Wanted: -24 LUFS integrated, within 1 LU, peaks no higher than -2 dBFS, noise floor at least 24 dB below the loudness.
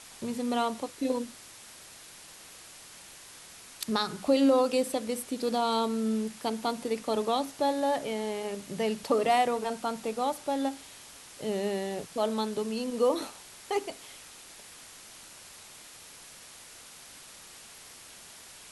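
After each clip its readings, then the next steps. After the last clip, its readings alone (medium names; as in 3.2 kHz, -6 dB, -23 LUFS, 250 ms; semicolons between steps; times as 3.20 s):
noise floor -50 dBFS; noise floor target -54 dBFS; loudness -30.0 LUFS; peak level -13.5 dBFS; loudness target -24.0 LUFS
-> noise reduction 6 dB, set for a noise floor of -50 dBFS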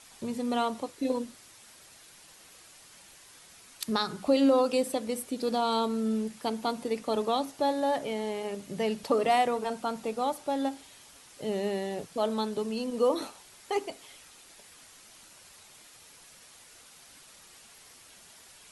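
noise floor -54 dBFS; loudness -30.0 LUFS; peak level -13.5 dBFS; loudness target -24.0 LUFS
-> trim +6 dB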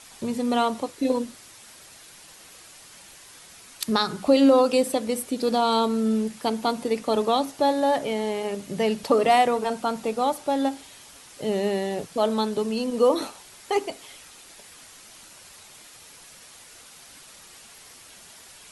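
loudness -24.0 LUFS; peak level -7.5 dBFS; noise floor -48 dBFS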